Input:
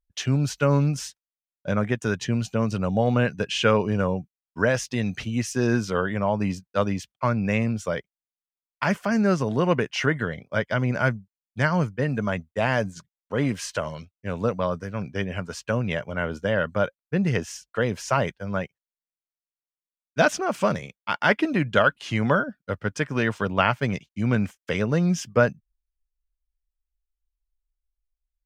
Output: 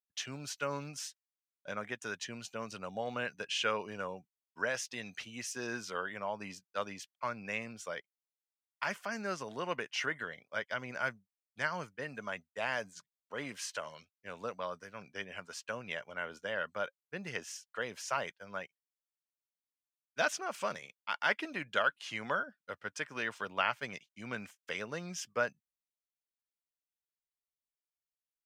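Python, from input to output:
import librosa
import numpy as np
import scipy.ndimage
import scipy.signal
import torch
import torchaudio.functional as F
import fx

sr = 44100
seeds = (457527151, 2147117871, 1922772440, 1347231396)

y = fx.lowpass(x, sr, hz=1200.0, slope=6)
y = np.diff(y, prepend=0.0)
y = y * 10.0 ** (8.5 / 20.0)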